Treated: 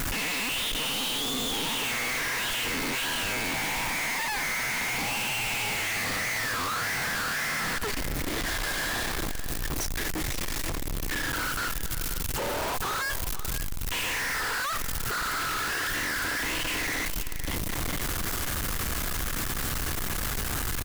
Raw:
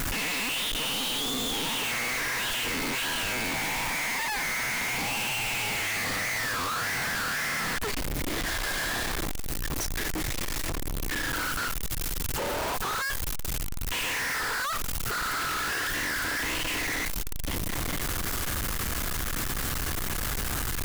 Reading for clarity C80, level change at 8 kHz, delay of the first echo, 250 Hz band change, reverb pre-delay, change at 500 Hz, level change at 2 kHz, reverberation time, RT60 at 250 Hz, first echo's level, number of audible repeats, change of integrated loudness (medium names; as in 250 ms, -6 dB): no reverb, 0.0 dB, 517 ms, 0.0 dB, no reverb, 0.0 dB, 0.0 dB, no reverb, no reverb, -13.5 dB, 1, 0.0 dB